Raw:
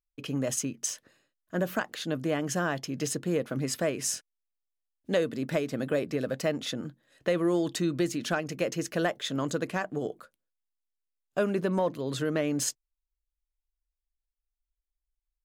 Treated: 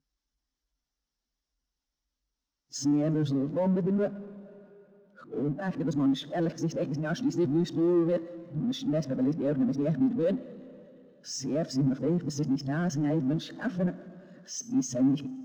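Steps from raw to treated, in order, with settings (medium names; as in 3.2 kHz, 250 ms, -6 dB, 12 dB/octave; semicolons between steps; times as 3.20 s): reverse the whole clip; cabinet simulation 100–6500 Hz, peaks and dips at 150 Hz +9 dB, 260 Hz +9 dB, 2.4 kHz -5 dB, 5.6 kHz +6 dB; Schroeder reverb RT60 2.3 s, combs from 27 ms, DRR 18.5 dB; power-law waveshaper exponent 0.5; spectral contrast expander 1.5:1; trim -2 dB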